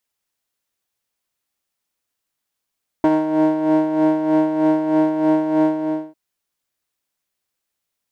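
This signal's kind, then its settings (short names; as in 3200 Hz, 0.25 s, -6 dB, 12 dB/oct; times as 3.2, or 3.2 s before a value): synth patch with tremolo D#4, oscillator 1 triangle, oscillator 2 triangle, interval +12 st, oscillator 2 level -14 dB, sub -15.5 dB, noise -26.5 dB, filter bandpass, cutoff 610 Hz, Q 1.3, filter envelope 0.5 oct, attack 2.5 ms, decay 0.05 s, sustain -7 dB, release 0.48 s, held 2.62 s, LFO 3.2 Hz, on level 7.5 dB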